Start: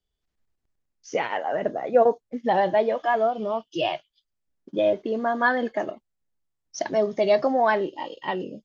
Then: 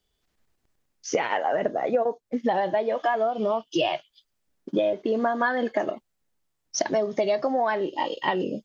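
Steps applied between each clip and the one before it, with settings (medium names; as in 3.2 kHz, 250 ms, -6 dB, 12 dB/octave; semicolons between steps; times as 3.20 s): gain riding within 3 dB 2 s; bass shelf 120 Hz -7 dB; compression 10:1, threshold -28 dBFS, peak gain reduction 15.5 dB; trim +7.5 dB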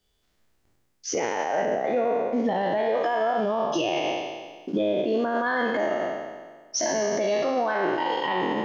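spectral sustain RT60 1.49 s; peak limiter -17.5 dBFS, peak gain reduction 10.5 dB; trim +1 dB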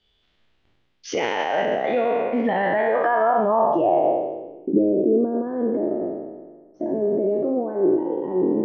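low-pass sweep 3.3 kHz -> 370 Hz, 2.07–4.77 s; trim +2.5 dB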